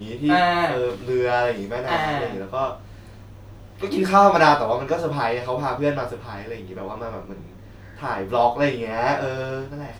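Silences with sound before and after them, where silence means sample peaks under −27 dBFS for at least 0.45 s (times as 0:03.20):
0:02.74–0:03.83
0:07.33–0:08.02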